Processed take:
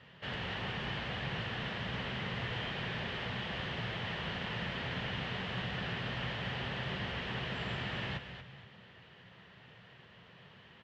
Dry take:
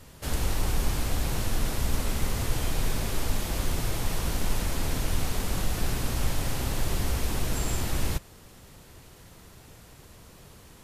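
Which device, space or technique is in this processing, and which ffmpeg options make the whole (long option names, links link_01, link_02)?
frequency-shifting delay pedal into a guitar cabinet: -filter_complex "[0:a]lowshelf=frequency=110:gain=-9,asplit=5[link_01][link_02][link_03][link_04][link_05];[link_02]adelay=235,afreqshift=-73,volume=-9dB[link_06];[link_03]adelay=470,afreqshift=-146,volume=-18.9dB[link_07];[link_04]adelay=705,afreqshift=-219,volume=-28.8dB[link_08];[link_05]adelay=940,afreqshift=-292,volume=-38.7dB[link_09];[link_01][link_06][link_07][link_08][link_09]amix=inputs=5:normalize=0,highpass=100,equalizer=frequency=120:width_type=q:width=4:gain=6,equalizer=frequency=180:width_type=q:width=4:gain=5,equalizer=frequency=300:width_type=q:width=4:gain=-9,equalizer=frequency=1800:width_type=q:width=4:gain=9,equalizer=frequency=3000:width_type=q:width=4:gain=9,lowpass=frequency=3600:width=0.5412,lowpass=frequency=3600:width=1.3066,volume=-5.5dB"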